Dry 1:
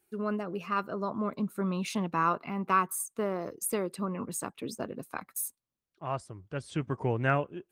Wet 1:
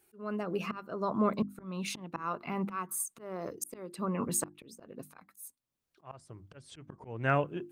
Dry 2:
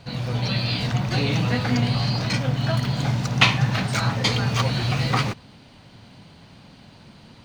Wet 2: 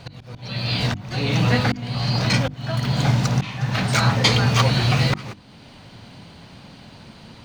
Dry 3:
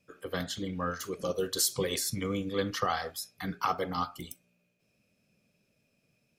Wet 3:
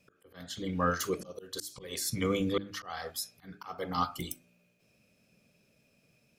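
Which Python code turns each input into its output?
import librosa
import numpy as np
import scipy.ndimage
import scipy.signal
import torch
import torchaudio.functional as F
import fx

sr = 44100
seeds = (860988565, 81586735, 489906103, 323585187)

y = fx.auto_swell(x, sr, attack_ms=536.0)
y = fx.hum_notches(y, sr, base_hz=50, count=7)
y = y * librosa.db_to_amplitude(5.0)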